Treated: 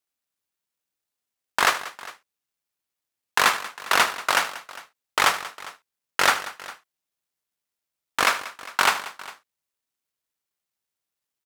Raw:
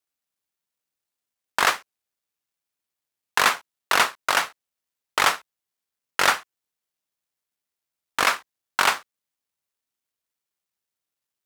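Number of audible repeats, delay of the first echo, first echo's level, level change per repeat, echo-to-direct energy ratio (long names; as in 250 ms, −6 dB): 3, 77 ms, −14.5 dB, repeats not evenly spaced, −11.5 dB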